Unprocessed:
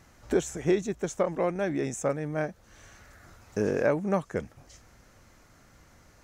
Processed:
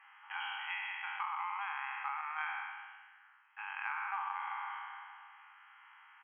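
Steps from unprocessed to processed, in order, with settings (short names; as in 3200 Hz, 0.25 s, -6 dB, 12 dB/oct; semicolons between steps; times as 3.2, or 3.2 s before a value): spectral trails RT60 2.24 s; dynamic EQ 1700 Hz, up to -8 dB, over -51 dBFS, Q 4.7; brick-wall FIR band-pass 780–3300 Hz; compressor, threshold -36 dBFS, peak gain reduction 8.5 dB; echo 0.124 s -14 dB; 2.21–3.59 three-band expander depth 100%; gain +1 dB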